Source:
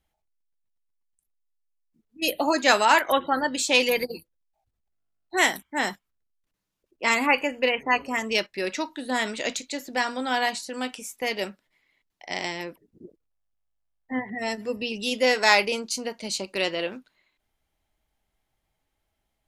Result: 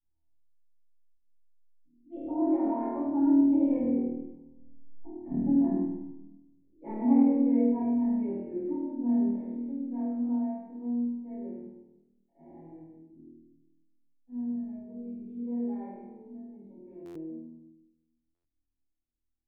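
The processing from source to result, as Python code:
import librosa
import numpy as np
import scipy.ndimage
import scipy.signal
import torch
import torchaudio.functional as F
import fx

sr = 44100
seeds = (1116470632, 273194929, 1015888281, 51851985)

p1 = fx.doppler_pass(x, sr, speed_mps=18, closest_m=2.3, pass_at_s=5.15)
p2 = fx.high_shelf(p1, sr, hz=3300.0, db=4.5)
p3 = fx.doubler(p2, sr, ms=28.0, db=-13.0)
p4 = fx.over_compress(p3, sr, threshold_db=-42.0, ratio=-0.5)
p5 = fx.formant_cascade(p4, sr, vowel='u')
p6 = fx.low_shelf(p5, sr, hz=220.0, db=11.0)
p7 = fx.notch(p6, sr, hz=850.0, q=26.0)
p8 = p7 + fx.room_flutter(p7, sr, wall_m=4.3, rt60_s=0.74, dry=0)
p9 = fx.room_shoebox(p8, sr, seeds[0], volume_m3=260.0, walls='mixed', distance_m=6.0)
p10 = fx.buffer_glitch(p9, sr, at_s=(17.05, 18.34), block=512, repeats=8)
y = p10 * librosa.db_to_amplitude(2.0)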